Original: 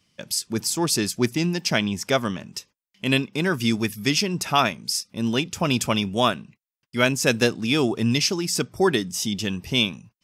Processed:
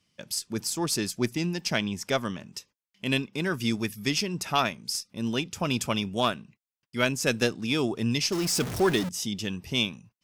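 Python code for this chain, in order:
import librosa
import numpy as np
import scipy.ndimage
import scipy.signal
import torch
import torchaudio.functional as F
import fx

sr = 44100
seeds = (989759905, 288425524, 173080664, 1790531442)

y = fx.zero_step(x, sr, step_db=-22.5, at=(8.32, 9.09))
y = fx.cheby_harmonics(y, sr, harmonics=(2,), levels_db=(-16,), full_scale_db=-4.0)
y = F.gain(torch.from_numpy(y), -5.5).numpy()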